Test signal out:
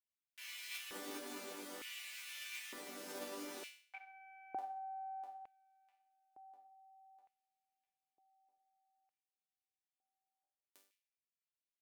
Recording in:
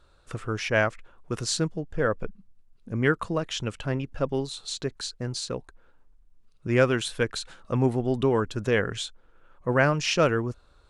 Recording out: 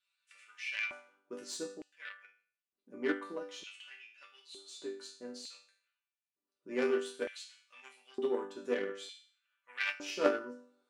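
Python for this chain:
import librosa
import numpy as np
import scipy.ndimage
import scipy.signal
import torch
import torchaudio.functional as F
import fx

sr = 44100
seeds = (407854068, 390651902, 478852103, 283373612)

p1 = fx.resonator_bank(x, sr, root=55, chord='major', decay_s=0.49)
p2 = fx.cheby_harmonics(p1, sr, harmonics=(3, 6), levels_db=(-12, -40), full_scale_db=-26.5)
p3 = np.clip(p2, -10.0 ** (-39.0 / 20.0), 10.0 ** (-39.0 / 20.0))
p4 = p2 + (p3 * 10.0 ** (-7.5 / 20.0))
p5 = fx.filter_lfo_highpass(p4, sr, shape='square', hz=0.55, low_hz=340.0, high_hz=2400.0, q=2.9)
y = p5 * 10.0 ** (12.5 / 20.0)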